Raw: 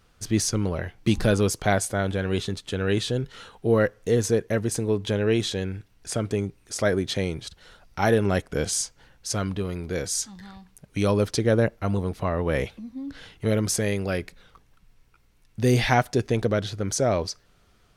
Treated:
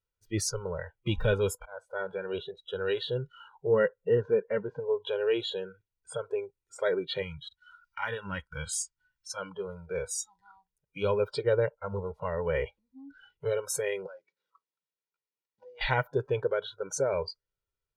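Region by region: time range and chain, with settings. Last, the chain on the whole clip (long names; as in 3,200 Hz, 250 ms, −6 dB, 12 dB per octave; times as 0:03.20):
0:01.57–0:02.59: high-shelf EQ 5,600 Hz −8 dB + volume swells 327 ms + amplitude modulation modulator 280 Hz, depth 20%
0:03.74–0:04.80: low-pass filter 3,400 Hz 24 dB per octave + parametric band 200 Hz +5.5 dB 0.72 octaves
0:07.22–0:09.37: flat-topped bell 530 Hz −13 dB 1.3 octaves + one half of a high-frequency compander encoder only
0:14.06–0:15.81: variable-slope delta modulation 32 kbit/s + high-pass filter 200 Hz 24 dB per octave + downward compressor, threshold −37 dBFS
whole clip: noise reduction from a noise print of the clip's start 27 dB; comb filter 2.1 ms, depth 68%; level −6.5 dB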